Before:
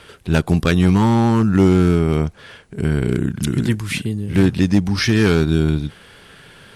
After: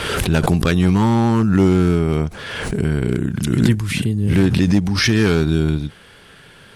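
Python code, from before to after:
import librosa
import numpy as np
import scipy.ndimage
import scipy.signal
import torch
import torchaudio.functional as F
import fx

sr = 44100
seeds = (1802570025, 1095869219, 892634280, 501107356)

y = fx.low_shelf(x, sr, hz=200.0, db=6.0, at=(3.68, 4.27))
y = fx.pre_swell(y, sr, db_per_s=34.0)
y = F.gain(torch.from_numpy(y), -1.0).numpy()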